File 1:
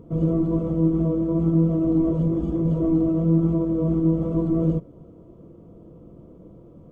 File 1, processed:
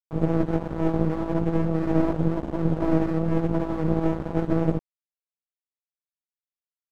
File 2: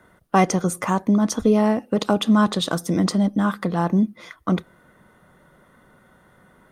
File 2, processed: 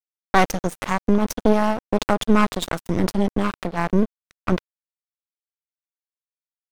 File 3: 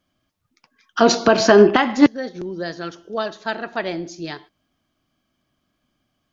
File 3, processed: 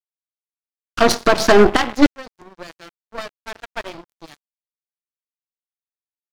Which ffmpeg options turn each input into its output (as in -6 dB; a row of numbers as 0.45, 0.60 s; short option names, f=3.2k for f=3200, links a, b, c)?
-af "aeval=exprs='0.891*(cos(1*acos(clip(val(0)/0.891,-1,1)))-cos(1*PI/2))+0.158*(cos(6*acos(clip(val(0)/0.891,-1,1)))-cos(6*PI/2))':c=same,aeval=exprs='sgn(val(0))*max(abs(val(0))-0.0447,0)':c=same"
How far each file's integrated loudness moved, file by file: -3.5, -1.0, +2.5 LU